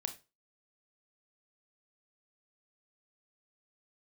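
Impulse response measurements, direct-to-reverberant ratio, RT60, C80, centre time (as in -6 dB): 6.5 dB, 0.30 s, 20.0 dB, 8 ms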